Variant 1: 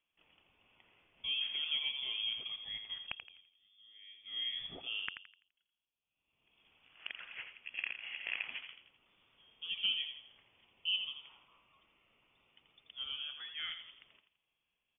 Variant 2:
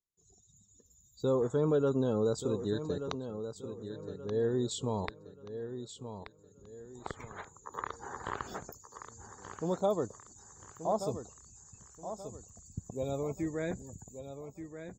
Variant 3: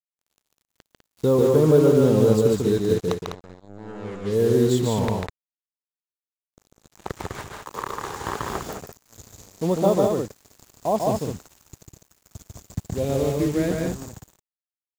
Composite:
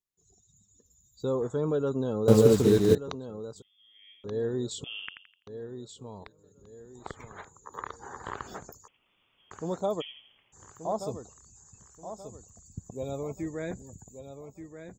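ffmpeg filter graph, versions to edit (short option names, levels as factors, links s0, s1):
-filter_complex "[0:a]asplit=4[s0][s1][s2][s3];[1:a]asplit=6[s4][s5][s6][s7][s8][s9];[s4]atrim=end=2.282[s10];[2:a]atrim=start=2.278:end=2.952[s11];[s5]atrim=start=2.948:end=3.622[s12];[s0]atrim=start=3.618:end=4.242[s13];[s6]atrim=start=4.238:end=4.842[s14];[s1]atrim=start=4.838:end=5.472[s15];[s7]atrim=start=5.468:end=8.882[s16];[s2]atrim=start=8.878:end=9.512[s17];[s8]atrim=start=9.508:end=10.02[s18];[s3]atrim=start=10:end=10.54[s19];[s9]atrim=start=10.52[s20];[s10][s11]acrossfade=d=0.004:c1=hsin:c2=hsin[s21];[s21][s12]acrossfade=d=0.004:c1=hsin:c2=hsin[s22];[s22][s13]acrossfade=d=0.004:c1=hsin:c2=hsin[s23];[s23][s14]acrossfade=d=0.004:c1=hsin:c2=hsin[s24];[s24][s15]acrossfade=d=0.004:c1=hsin:c2=hsin[s25];[s25][s16]acrossfade=d=0.004:c1=hsin:c2=hsin[s26];[s26][s17]acrossfade=d=0.004:c1=hsin:c2=hsin[s27];[s27][s18]acrossfade=d=0.004:c1=hsin:c2=hsin[s28];[s28][s19]acrossfade=d=0.02:c1=tri:c2=tri[s29];[s29][s20]acrossfade=d=0.02:c1=tri:c2=tri"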